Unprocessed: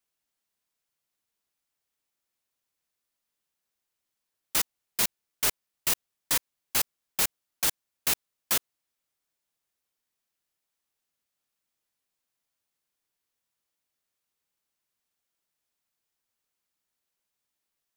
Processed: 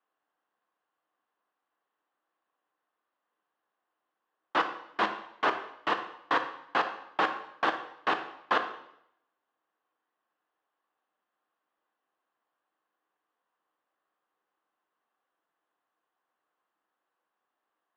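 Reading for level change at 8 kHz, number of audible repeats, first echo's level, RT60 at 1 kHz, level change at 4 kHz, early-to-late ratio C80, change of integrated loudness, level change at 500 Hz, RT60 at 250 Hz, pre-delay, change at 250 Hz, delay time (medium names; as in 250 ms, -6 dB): under -30 dB, no echo, no echo, 0.75 s, -6.5 dB, 12.0 dB, -3.0 dB, +8.5 dB, 0.75 s, 6 ms, +5.5 dB, no echo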